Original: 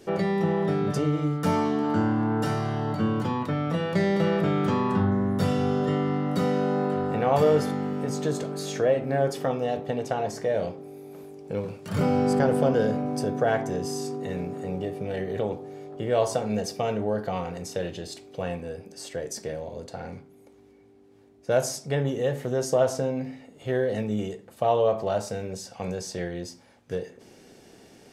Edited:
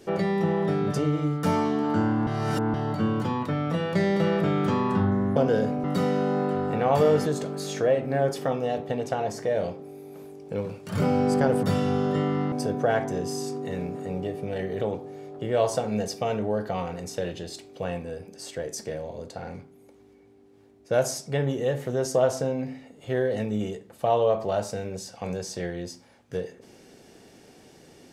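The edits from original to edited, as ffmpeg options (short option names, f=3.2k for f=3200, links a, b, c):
-filter_complex "[0:a]asplit=8[a][b][c][d][e][f][g][h];[a]atrim=end=2.272[i];[b]atrim=start=2.268:end=2.742,asetpts=PTS-STARTPTS,areverse[j];[c]atrim=start=2.738:end=5.362[k];[d]atrim=start=12.618:end=13.102[l];[e]atrim=start=6.248:end=7.672[m];[f]atrim=start=8.248:end=12.622[n];[g]atrim=start=5.358:end=6.252[o];[h]atrim=start=13.098[p];[i][j]acrossfade=d=0.004:c1=hsin:c2=hsin[q];[q][k]acrossfade=d=0.004:c1=hsin:c2=hsin[r];[r][l]acrossfade=d=0.004:c1=hsin:c2=hsin[s];[s][m]acrossfade=d=0.004:c1=hsin:c2=hsin[t];[t][n]acrossfade=d=0.004:c1=hsin:c2=hsin[u];[u][o]acrossfade=d=0.004:c1=hsin:c2=hsin[v];[v][p]acrossfade=d=0.004:c1=hsin:c2=hsin"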